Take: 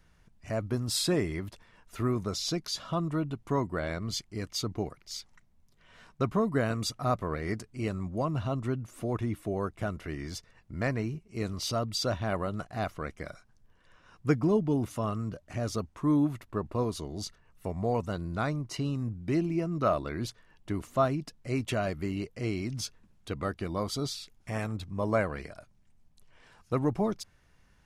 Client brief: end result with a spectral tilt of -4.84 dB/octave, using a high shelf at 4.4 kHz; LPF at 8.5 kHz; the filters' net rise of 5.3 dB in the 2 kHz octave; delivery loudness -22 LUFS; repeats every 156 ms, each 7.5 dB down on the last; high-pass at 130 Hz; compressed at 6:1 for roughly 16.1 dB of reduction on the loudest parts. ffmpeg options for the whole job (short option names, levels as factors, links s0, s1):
-af "highpass=130,lowpass=8500,equalizer=f=2000:t=o:g=7.5,highshelf=f=4400:g=-4,acompressor=threshold=0.0126:ratio=6,aecho=1:1:156|312|468|624|780:0.422|0.177|0.0744|0.0312|0.0131,volume=10"